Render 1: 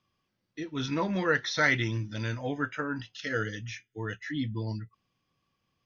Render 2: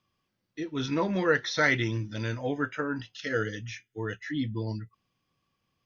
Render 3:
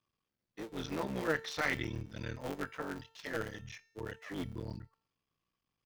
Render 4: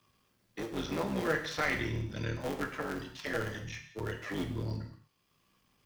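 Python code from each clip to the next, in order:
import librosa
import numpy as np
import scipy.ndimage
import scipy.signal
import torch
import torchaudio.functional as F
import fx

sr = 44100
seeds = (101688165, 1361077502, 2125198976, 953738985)

y1 = fx.dynamic_eq(x, sr, hz=420.0, q=1.3, threshold_db=-44.0, ratio=4.0, max_db=4)
y2 = fx.cycle_switch(y1, sr, every=3, mode='muted')
y2 = fx.comb_fb(y2, sr, f0_hz=450.0, decay_s=0.67, harmonics='all', damping=0.0, mix_pct=60)
y3 = fx.rev_gated(y2, sr, seeds[0], gate_ms=240, shape='falling', drr_db=4.0)
y3 = fx.band_squash(y3, sr, depth_pct=40)
y3 = F.gain(torch.from_numpy(y3), 2.5).numpy()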